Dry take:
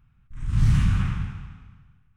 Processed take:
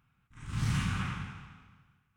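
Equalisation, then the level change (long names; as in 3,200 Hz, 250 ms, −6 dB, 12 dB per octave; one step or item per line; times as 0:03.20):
high-pass filter 380 Hz 6 dB per octave
notch filter 1,800 Hz, Q 25
0.0 dB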